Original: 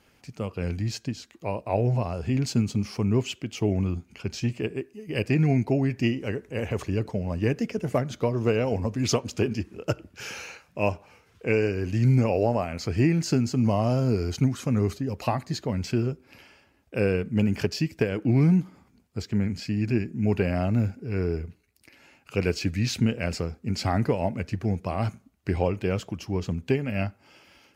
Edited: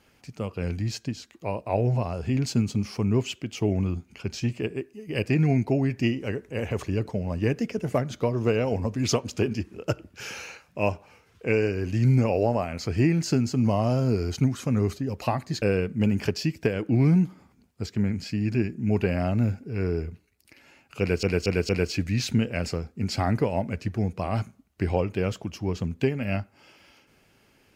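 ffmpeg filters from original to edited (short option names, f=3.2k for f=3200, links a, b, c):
-filter_complex "[0:a]asplit=5[a][b][c][d][e];[a]atrim=end=15.622[f];[b]atrim=start=16.978:end=22.592[g];[c]atrim=start=22.358:end=22.592[h];[d]atrim=start=22.358:end=22.592[i];[e]atrim=start=22.358[j];[f][g]acrossfade=d=0.004:c1=hsin:c2=hsin[k];[k][h]acrossfade=d=0.004:c1=hsin:c2=hsin[l];[l][i]acrossfade=d=0.004:c1=hsin:c2=hsin[m];[m][j]acrossfade=d=0.004:c1=hsin:c2=hsin"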